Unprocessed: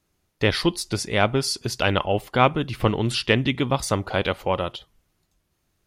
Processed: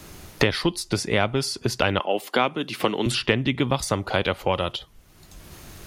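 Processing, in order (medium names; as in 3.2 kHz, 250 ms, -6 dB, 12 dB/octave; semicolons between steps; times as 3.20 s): 1.99–3.06 s: high-pass 230 Hz 24 dB/octave; three bands compressed up and down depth 100%; trim -1.5 dB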